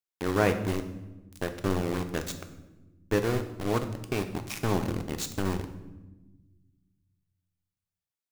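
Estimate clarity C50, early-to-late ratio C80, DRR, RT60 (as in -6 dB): 10.5 dB, 13.0 dB, 7.0 dB, 1.1 s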